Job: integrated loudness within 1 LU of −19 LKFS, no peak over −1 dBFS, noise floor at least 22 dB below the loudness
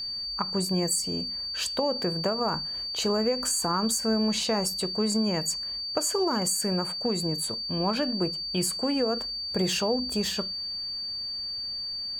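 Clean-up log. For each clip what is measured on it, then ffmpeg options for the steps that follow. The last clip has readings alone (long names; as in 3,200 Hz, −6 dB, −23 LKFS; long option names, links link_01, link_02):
interfering tone 4,600 Hz; level of the tone −31 dBFS; integrated loudness −27.0 LKFS; sample peak −12.5 dBFS; target loudness −19.0 LKFS
→ -af "bandreject=frequency=4600:width=30"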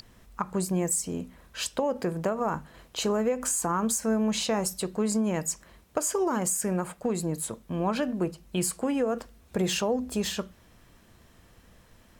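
interfering tone none found; integrated loudness −29.0 LKFS; sample peak −13.5 dBFS; target loudness −19.0 LKFS
→ -af "volume=10dB"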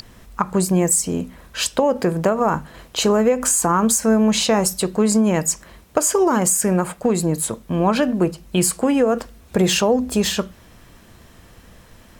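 integrated loudness −19.0 LKFS; sample peak −3.5 dBFS; background noise floor −48 dBFS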